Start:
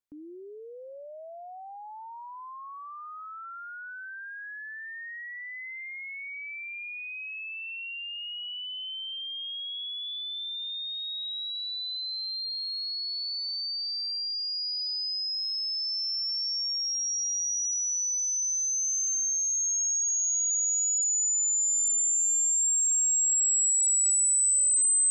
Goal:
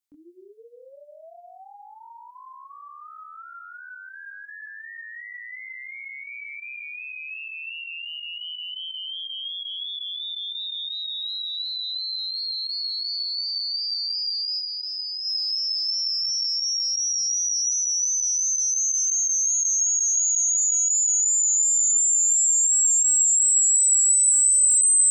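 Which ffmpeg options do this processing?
-filter_complex "[0:a]asettb=1/sr,asplit=3[s0][s1][s2];[s0]atrim=end=14.594[s3];[s1]atrim=start=14.59:end=15.25,asetpts=PTS-STARTPTS,afade=t=in:d=0.004:c=qsin,afade=t=out:st=0.656:d=0.004:c=qsin,acrossover=split=3600[s4][s5];[s5]acompressor=threshold=0.0112:ratio=4:attack=1:release=60[s6];[s4][s6]amix=inputs=2:normalize=0[s7];[s2]atrim=start=15.246[s8];[s3][s7]acrossfade=d=0.004:c1=hsin:c2=qsin[s9];[s9][s8]acrossfade=d=0.004:c1=qsin:c2=hsin,flanger=delay=18:depth=7:speed=2.8,highshelf=f=2100:g=11,volume=0.841"

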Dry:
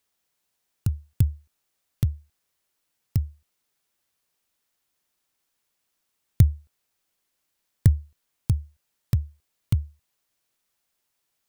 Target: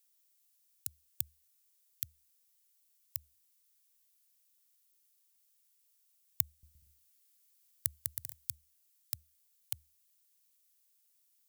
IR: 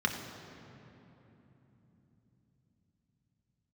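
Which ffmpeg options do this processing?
-filter_complex "[0:a]aderivative,asettb=1/sr,asplit=3[s0][s1][s2];[s0]atrim=end=6.434[s3];[s1]atrim=start=6.43:end=8.55,asetpts=PTS-STARTPTS,afade=t=in:d=0.004:c=qsin,afade=t=out:st=2.116:d=0.004:c=qsin,aecho=1:1:200|320|392|435.2|461.1:0.631|0.398|0.251|0.158|0.1,atrim=end_sample=93492[s4];[s2]atrim=start=8.546[s5];[s3][s4]acrossfade=d=0.004:c1=hsin:c2=qsin[s6];[s6][s5]acrossfade=d=0.004:c1=qsin:c2=hsin,volume=1.26"

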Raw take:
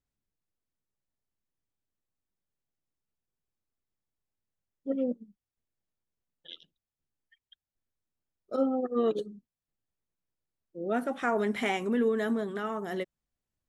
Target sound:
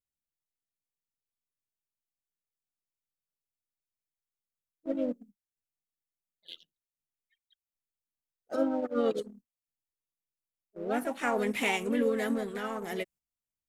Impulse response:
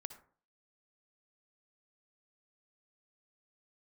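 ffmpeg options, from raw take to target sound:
-filter_complex "[0:a]aexciter=amount=1.3:drive=7.3:freq=2100,asplit=2[s0][s1];[s1]asetrate=52444,aresample=44100,atempo=0.840896,volume=0.501[s2];[s0][s2]amix=inputs=2:normalize=0,asplit=2[s3][s4];[s4]aeval=exprs='sgn(val(0))*max(abs(val(0))-0.00841,0)':c=same,volume=0.631[s5];[s3][s5]amix=inputs=2:normalize=0,agate=range=0.398:threshold=0.00447:ratio=16:detection=peak,volume=0.501"

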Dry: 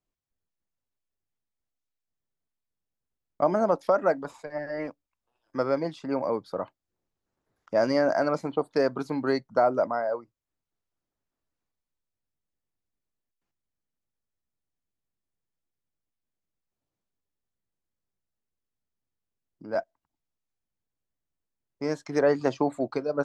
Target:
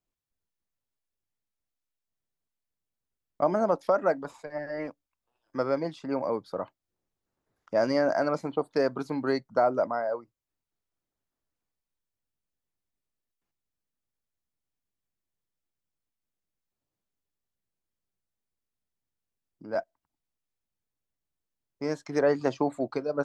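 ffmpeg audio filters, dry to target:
-af "volume=0.841"

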